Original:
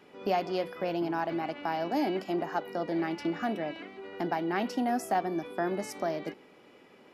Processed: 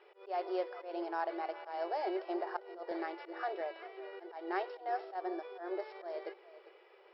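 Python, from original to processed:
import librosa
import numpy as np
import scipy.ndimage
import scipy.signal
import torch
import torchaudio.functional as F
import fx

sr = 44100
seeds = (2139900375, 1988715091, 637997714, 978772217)

y = scipy.signal.medfilt(x, 9)
y = fx.dynamic_eq(y, sr, hz=2700.0, q=1.5, threshold_db=-53.0, ratio=4.0, max_db=-6)
y = fx.auto_swell(y, sr, attack_ms=162.0)
y = fx.brickwall_bandpass(y, sr, low_hz=340.0, high_hz=5500.0)
y = y + 10.0 ** (-16.0 / 20.0) * np.pad(y, (int(399 * sr / 1000.0), 0))[:len(y)]
y = fx.band_squash(y, sr, depth_pct=40, at=(2.91, 3.61))
y = y * 10.0 ** (-3.0 / 20.0)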